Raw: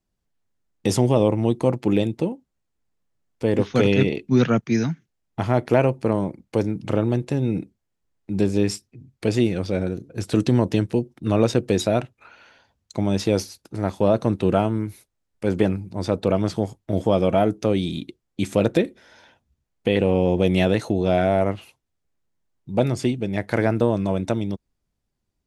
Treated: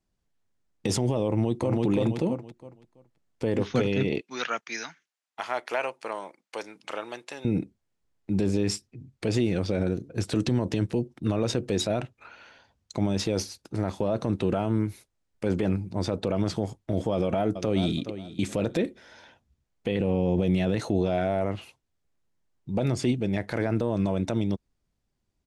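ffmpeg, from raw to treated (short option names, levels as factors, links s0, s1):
-filter_complex "[0:a]asplit=2[s0][s1];[s1]afade=t=in:st=1.29:d=0.01,afade=t=out:st=1.85:d=0.01,aecho=0:1:330|660|990|1320:0.794328|0.198582|0.0496455|0.0124114[s2];[s0][s2]amix=inputs=2:normalize=0,asettb=1/sr,asplit=3[s3][s4][s5];[s3]atrim=end=4.214[s6];[s4]atrim=start=4.21:end=7.45,asetpts=PTS-STARTPTS,afade=t=in:d=0.004:c=qsin,afade=t=out:st=3.236:d=0.004:c=qsin,highpass=1000[s7];[s5]atrim=start=7.446[s8];[s6][s7]acrossfade=d=0.004:c1=hsin:c2=qsin[s9];[s9][s8]acrossfade=d=0.004:c1=qsin:c2=hsin,asplit=2[s10][s11];[s11]afade=t=in:st=17.13:d=0.01,afade=t=out:st=17.97:d=0.01,aecho=0:1:420|840:0.149624|0.0299247[s12];[s10][s12]amix=inputs=2:normalize=0,asettb=1/sr,asplit=3[s13][s14][s15];[s13]atrim=end=19.914[s16];[s14]atrim=start=19.91:end=20.77,asetpts=PTS-STARTPTS,afade=t=in:d=0.004:c=qsin,afade=t=out:st=0.856:d=0.004:c=qsin,equalizer=f=150:t=o:w=2:g=5.5[s17];[s15]atrim=start=20.766[s18];[s16][s17]acrossfade=d=0.004:c1=hsin:c2=qsin[s19];[s19][s18]acrossfade=d=0.004:c1=qsin:c2=hsin,lowpass=9800,alimiter=limit=0.168:level=0:latency=1:release=42"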